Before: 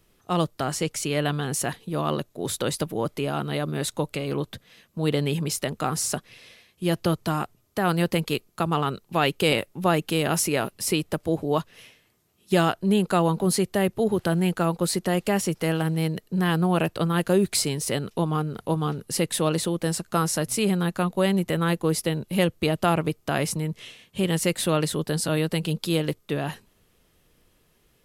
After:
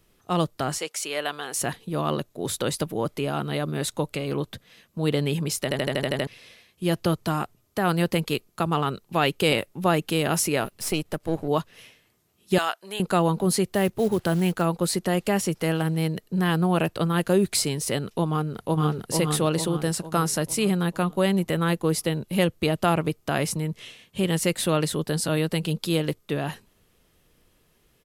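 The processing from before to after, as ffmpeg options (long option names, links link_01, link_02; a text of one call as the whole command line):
ffmpeg -i in.wav -filter_complex "[0:a]asettb=1/sr,asplit=3[link_01][link_02][link_03];[link_01]atrim=end=0.784[link_04];[link_02]atrim=start=0.78:end=1.56,asetpts=PTS-STARTPTS,afade=type=in:duration=0.004:curve=qsin,afade=type=out:start_time=0.776:duration=0.004:curve=qsin,highpass=540[link_05];[link_03]atrim=start=1.556[link_06];[link_04][link_05]acrossfade=duration=0.004:curve1=hsin:curve2=qsin[link_07];[link_07][link_06]acrossfade=duration=0.004:curve1=qsin:curve2=hsin,asettb=1/sr,asplit=3[link_08][link_09][link_10];[link_08]atrim=end=10.644[link_11];[link_09]atrim=start=10.64:end=11.48,asetpts=PTS-STARTPTS,afade=type=in:duration=0.004:curve=qsin,afade=type=out:start_time=0.836:duration=0.004:curve=qsin,aeval=exprs='if(lt(val(0),0),0.447*val(0),val(0))':channel_layout=same[link_12];[link_10]atrim=start=11.476[link_13];[link_11][link_12]acrossfade=duration=0.004:curve1=hsin:curve2=qsin[link_14];[link_14][link_13]acrossfade=duration=0.004:curve1=qsin:curve2=hsin,asettb=1/sr,asplit=3[link_15][link_16][link_17];[link_15]atrim=end=12.584[link_18];[link_16]atrim=start=12.58:end=13,asetpts=PTS-STARTPTS,afade=type=in:duration=0.004:curve=qsin,afade=type=out:start_time=0.416:duration=0.004:curve=qsin,highpass=840[link_19];[link_17]atrim=start=12.996[link_20];[link_18][link_19]acrossfade=duration=0.004:curve1=hsin:curve2=qsin[link_21];[link_21][link_20]acrossfade=duration=0.004:curve1=qsin:curve2=hsin,asettb=1/sr,asplit=3[link_22][link_23][link_24];[link_22]atrim=end=13.664[link_25];[link_23]atrim=start=13.66:end=14.62,asetpts=PTS-STARTPTS,afade=type=in:duration=0.004:curve=qsin,afade=type=out:start_time=0.956:duration=0.004:curve=qsin,acrusher=bits=6:mode=log:mix=0:aa=0.000001[link_26];[link_24]atrim=start=14.616[link_27];[link_25][link_26]acrossfade=duration=0.004:curve1=hsin:curve2=qsin[link_28];[link_28][link_27]acrossfade=duration=0.004:curve1=qsin:curve2=hsin,asplit=2[link_29][link_30];[link_30]afade=type=in:start_time=18.32:duration=0.01,afade=type=out:start_time=19.05:duration=0.01,aecho=0:1:450|900|1350|1800|2250|2700|3150:0.707946|0.353973|0.176986|0.0884932|0.0442466|0.0221233|0.0110617[link_31];[link_29][link_31]amix=inputs=2:normalize=0,asplit=9[link_32][link_33][link_34][link_35][link_36][link_37][link_38][link_39][link_40];[link_32]atrim=end=5.712[link_41];[link_33]atrim=start=5.628:end=5.712[link_42];[link_34]atrim=start=5.628:end=5.712[link_43];[link_35]atrim=start=5.628:end=5.712[link_44];[link_36]atrim=start=5.628:end=5.712[link_45];[link_37]atrim=start=5.628:end=5.712[link_46];[link_38]atrim=start=5.628:end=5.712[link_47];[link_39]atrim=start=5.628:end=5.712[link_48];[link_40]atrim=start=6.268[link_49];[link_41][link_42]acrossfade=duration=0.004:curve1=hsin:curve2=hsin[link_50];[link_50][link_43]acrossfade=duration=0.004:curve1=hsin:curve2=hsin[link_51];[link_51][link_44]acrossfade=duration=0.004:curve1=hsin:curve2=hsin[link_52];[link_52][link_45]acrossfade=duration=0.004:curve1=hsin:curve2=hsin[link_53];[link_53][link_46]acrossfade=duration=0.004:curve1=hsin:curve2=hsin[link_54];[link_54][link_47]acrossfade=duration=0.004:curve1=hsin:curve2=hsin[link_55];[link_55][link_48]acrossfade=duration=0.004:curve1=hsin:curve2=hsin[link_56];[link_56][link_49]acrossfade=duration=0.004:curve1=hsin:curve2=hsin" out.wav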